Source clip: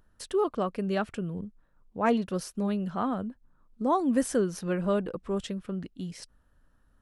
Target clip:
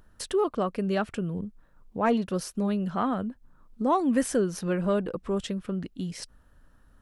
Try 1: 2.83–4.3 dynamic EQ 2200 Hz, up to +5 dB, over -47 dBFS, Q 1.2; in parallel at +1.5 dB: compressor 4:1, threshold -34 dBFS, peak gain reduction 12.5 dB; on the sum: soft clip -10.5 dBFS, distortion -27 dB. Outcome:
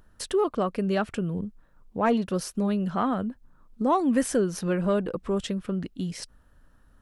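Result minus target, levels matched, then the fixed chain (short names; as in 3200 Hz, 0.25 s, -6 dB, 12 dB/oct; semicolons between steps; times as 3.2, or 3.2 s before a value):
compressor: peak gain reduction -5.5 dB
2.83–4.3 dynamic EQ 2200 Hz, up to +5 dB, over -47 dBFS, Q 1.2; in parallel at +1.5 dB: compressor 4:1, threshold -41.5 dBFS, peak gain reduction 18 dB; on the sum: soft clip -10.5 dBFS, distortion -29 dB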